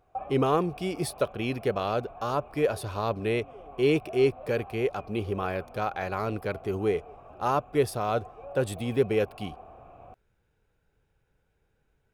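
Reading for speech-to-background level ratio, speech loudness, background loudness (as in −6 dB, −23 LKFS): 17.5 dB, −29.0 LKFS, −46.5 LKFS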